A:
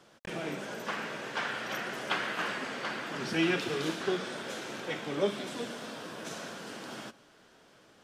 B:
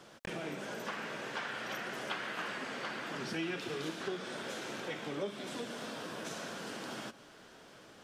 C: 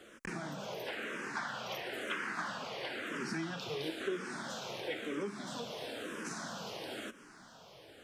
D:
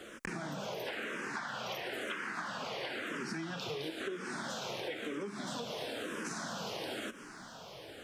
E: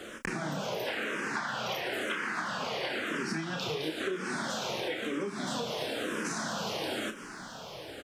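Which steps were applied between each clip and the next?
compression 2.5:1, threshold -45 dBFS, peak gain reduction 14.5 dB; trim +4 dB
barber-pole phaser -1 Hz; trim +3 dB
compression, threshold -43 dBFS, peak gain reduction 11.5 dB; trim +6.5 dB
doubling 32 ms -8 dB; trim +5 dB

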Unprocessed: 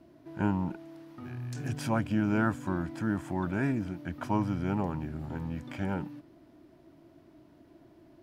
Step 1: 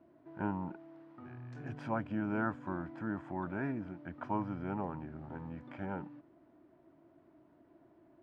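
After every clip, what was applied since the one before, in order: low-pass 1.3 kHz 12 dB/octave; tilt EQ +2.5 dB/octave; trim -2.5 dB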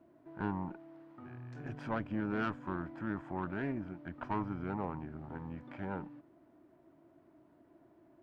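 valve stage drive 29 dB, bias 0.65; trim +3.5 dB

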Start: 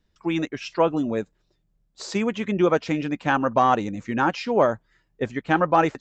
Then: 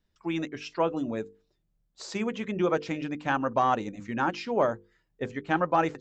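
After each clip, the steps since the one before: hum notches 50/100/150/200/250/300/350/400/450/500 Hz; trim -5.5 dB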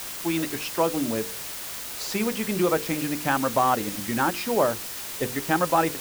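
in parallel at 0 dB: compression, threshold -35 dBFS, peak gain reduction 15 dB; on the sum: word length cut 6-bit, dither triangular; trim +1 dB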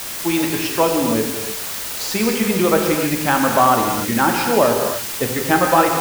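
gated-style reverb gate 320 ms flat, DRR 2 dB; trim +6 dB

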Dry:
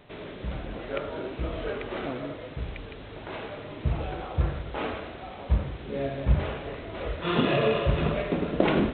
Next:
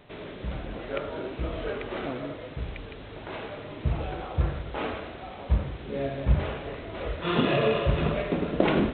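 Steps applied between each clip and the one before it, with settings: no audible change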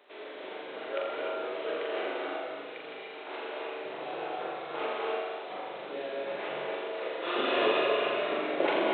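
high-pass 360 Hz 24 dB/octave; on a send: flutter echo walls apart 7.2 m, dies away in 0.72 s; on the sum: gated-style reverb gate 320 ms rising, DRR -0.5 dB; trim -4.5 dB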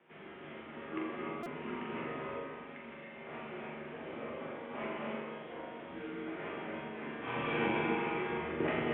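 chord resonator D#2 major, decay 0.26 s; mistuned SSB -230 Hz 440–3100 Hz; buffer glitch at 1.43 s, samples 128, times 10; trim +6.5 dB

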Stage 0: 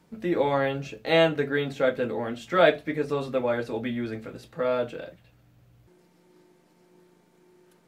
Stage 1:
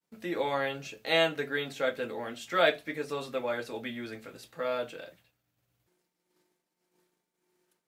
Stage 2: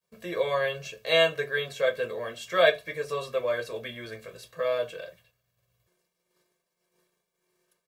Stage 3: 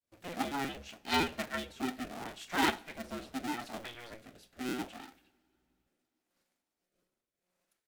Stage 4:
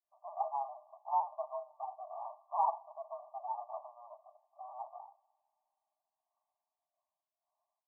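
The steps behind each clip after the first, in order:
expander -50 dBFS; tilt EQ +2.5 dB/octave; trim -4.5 dB
comb 1.8 ms, depth 94%
cycle switcher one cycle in 2, inverted; rotary cabinet horn 6.3 Hz, later 0.75 Hz, at 0.74 s; two-slope reverb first 0.53 s, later 3.6 s, from -19 dB, DRR 17 dB; trim -6.5 dB
brick-wall FIR band-pass 590–1200 Hz; trim +3 dB

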